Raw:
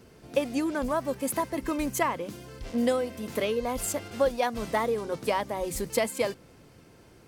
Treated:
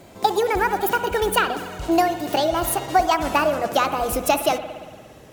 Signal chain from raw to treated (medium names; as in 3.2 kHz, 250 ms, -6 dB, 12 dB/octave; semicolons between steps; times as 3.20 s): gliding tape speed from 150% -> 123%; spring tank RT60 1.6 s, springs 58 ms, chirp 70 ms, DRR 9.5 dB; trim +7.5 dB